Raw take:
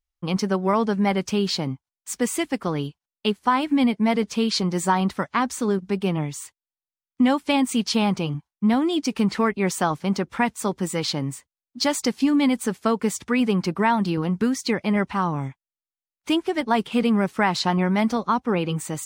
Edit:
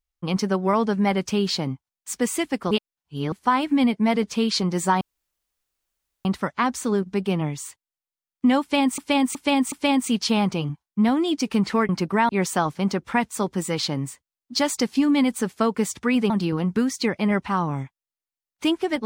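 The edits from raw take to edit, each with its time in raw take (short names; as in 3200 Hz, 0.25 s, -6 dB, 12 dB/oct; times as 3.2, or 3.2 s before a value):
2.71–3.32 reverse
5.01 insert room tone 1.24 s
7.37–7.74 loop, 4 plays
13.55–13.95 move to 9.54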